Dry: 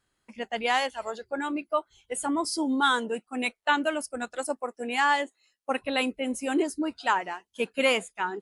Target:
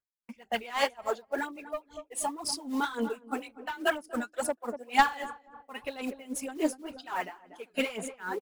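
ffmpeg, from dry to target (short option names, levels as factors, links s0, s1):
-filter_complex "[0:a]agate=range=0.0355:threshold=0.00158:ratio=16:detection=peak,equalizer=f=980:w=0.64:g=3,acrusher=bits=6:mode=log:mix=0:aa=0.000001,aphaser=in_gain=1:out_gain=1:delay=4.9:decay=0.62:speed=2:type=sinusoidal,asplit=3[s0][s1][s2];[s0]afade=t=out:st=3.39:d=0.02[s3];[s1]afreqshift=37,afade=t=in:st=3.39:d=0.02,afade=t=out:st=3.9:d=0.02[s4];[s2]afade=t=in:st=3.9:d=0.02[s5];[s3][s4][s5]amix=inputs=3:normalize=0,asoftclip=type=tanh:threshold=0.237,asettb=1/sr,asplit=3[s6][s7][s8];[s6]atrim=end=1.494[s9];[s7]atrim=start=1.49:end=2.33,asetpts=PTS-STARTPTS,afade=t=in:d=0.004:c=qsin,afade=t=out:st=0.836:d=0.004:c=qsin,asuperstop=centerf=1500:order=4:qfactor=4.2[s10];[s8]atrim=start=2.326[s11];[s9][s10]acrossfade=d=0.004:c1=hsin:c2=qsin[s12];[s12][s11]acrossfade=d=0.004:c1=qsin:c2=hsin,asplit=2[s13][s14];[s14]adelay=240,lowpass=f=890:p=1,volume=0.2,asplit=2[s15][s16];[s16]adelay=240,lowpass=f=890:p=1,volume=0.44,asplit=2[s17][s18];[s18]adelay=240,lowpass=f=890:p=1,volume=0.44,asplit=2[s19][s20];[s20]adelay=240,lowpass=f=890:p=1,volume=0.44[s21];[s13][s15][s17][s19][s21]amix=inputs=5:normalize=0,aeval=exprs='val(0)*pow(10,-21*(0.5-0.5*cos(2*PI*3.6*n/s))/20)':c=same"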